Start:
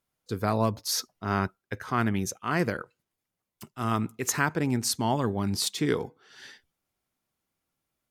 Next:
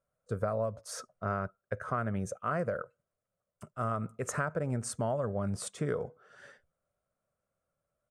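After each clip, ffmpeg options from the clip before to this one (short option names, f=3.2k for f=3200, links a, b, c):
-af "firequalizer=gain_entry='entry(160,0);entry(310,-11);entry(570,11);entry(850,-8);entry(1300,3);entry(1900,-9);entry(4100,-20);entry(8700,-5);entry(13000,-26)':delay=0.05:min_phase=1,acompressor=threshold=-28dB:ratio=10"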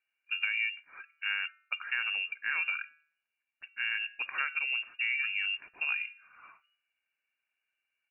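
-af "bandreject=f=155.6:t=h:w=4,bandreject=f=311.2:t=h:w=4,bandreject=f=466.8:t=h:w=4,bandreject=f=622.4:t=h:w=4,bandreject=f=778:t=h:w=4,bandreject=f=933.6:t=h:w=4,bandreject=f=1.0892k:t=h:w=4,bandreject=f=1.2448k:t=h:w=4,bandreject=f=1.4004k:t=h:w=4,bandreject=f=1.556k:t=h:w=4,bandreject=f=1.7116k:t=h:w=4,lowpass=f=2.5k:t=q:w=0.5098,lowpass=f=2.5k:t=q:w=0.6013,lowpass=f=2.5k:t=q:w=0.9,lowpass=f=2.5k:t=q:w=2.563,afreqshift=-2900"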